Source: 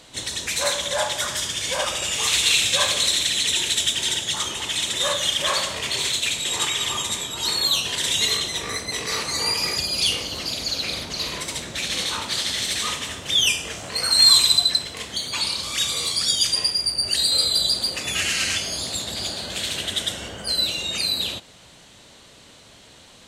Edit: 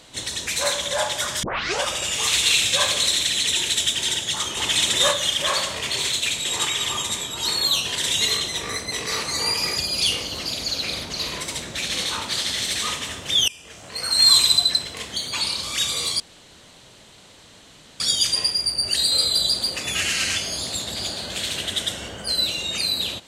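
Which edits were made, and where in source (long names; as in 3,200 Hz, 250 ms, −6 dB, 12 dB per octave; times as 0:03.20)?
0:01.43: tape start 0.39 s
0:04.57–0:05.11: clip gain +4.5 dB
0:13.48–0:14.38: fade in, from −23.5 dB
0:16.20: splice in room tone 1.80 s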